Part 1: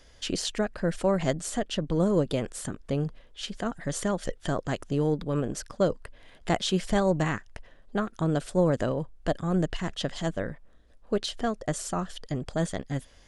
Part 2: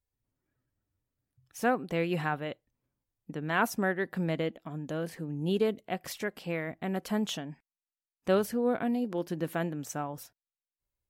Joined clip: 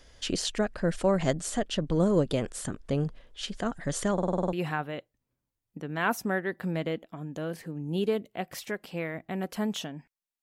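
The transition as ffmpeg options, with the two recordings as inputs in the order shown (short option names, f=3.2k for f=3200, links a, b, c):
-filter_complex "[0:a]apad=whole_dur=10.42,atrim=end=10.42,asplit=8[a][b][c][d][e][f][g][h];[a]atrim=end=4.182[i];[b]atrim=start=4.128:end=4.182[j];[c]atrim=start=4.128:end=4.182[k];[d]atrim=start=4.128:end=4.182[l];[e]atrim=start=4.128:end=4.182[m];[f]atrim=start=4.128:end=4.182[n];[g]atrim=start=4.128:end=4.182[o];[h]atrim=start=4.128:end=4.182[p];[1:a]atrim=start=2.058:end=7.95[q];[i][j]acrossfade=d=0.004:c1=hsin:c2=hsin[r];[r][k]acrossfade=d=0.004:c1=hsin:c2=hsin[s];[s][l]acrossfade=d=0.004:c1=hsin:c2=hsin[t];[t][m]acrossfade=d=0.004:c1=hsin:c2=hsin[u];[u][n]acrossfade=d=0.004:c1=hsin:c2=hsin[v];[v][o]acrossfade=d=0.004:c1=hsin:c2=hsin[w];[w][p]acrossfade=d=0.004:c1=hsin:c2=hsin[x];[x][q]acrossfade=d=0.004:c1=hsin:c2=hsin"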